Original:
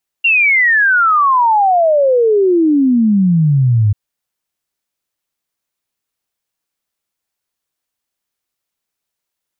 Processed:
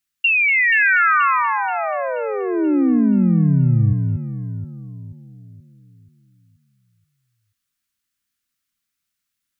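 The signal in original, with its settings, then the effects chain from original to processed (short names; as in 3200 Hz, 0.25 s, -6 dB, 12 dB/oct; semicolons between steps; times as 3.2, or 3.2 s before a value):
log sweep 2800 Hz -> 100 Hz 3.69 s -8 dBFS
band shelf 590 Hz -14 dB; compressor, threshold -15 dBFS; on a send: echo with dull and thin repeats by turns 0.24 s, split 2100 Hz, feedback 66%, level -4 dB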